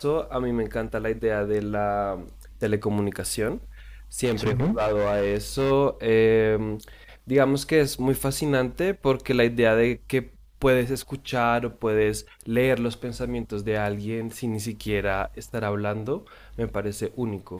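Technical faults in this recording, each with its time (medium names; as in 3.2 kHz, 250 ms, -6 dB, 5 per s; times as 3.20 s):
4.24–5.72 s: clipped -19.5 dBFS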